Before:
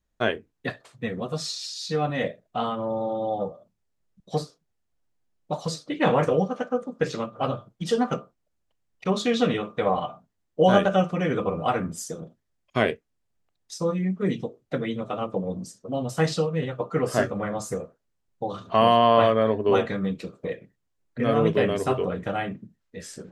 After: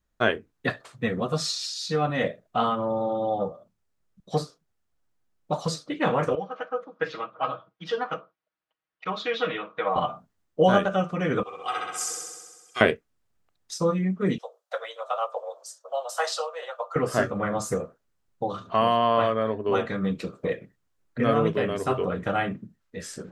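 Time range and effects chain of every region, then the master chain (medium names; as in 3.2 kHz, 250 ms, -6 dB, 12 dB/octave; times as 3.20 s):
6.35–9.96 s: high-pass 1.4 kHz 6 dB/octave + distance through air 280 m + comb 6.3 ms, depth 64%
11.43–12.81 s: band-pass filter 6.7 kHz, Q 0.62 + comb 2.5 ms, depth 64% + flutter echo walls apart 11.1 m, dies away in 1.4 s
14.38–16.96 s: steep high-pass 550 Hz 48 dB/octave + peaking EQ 2.2 kHz -8 dB 0.91 oct
whole clip: gain riding within 4 dB 0.5 s; peaking EQ 1.3 kHz +4.5 dB 0.68 oct; trim -1 dB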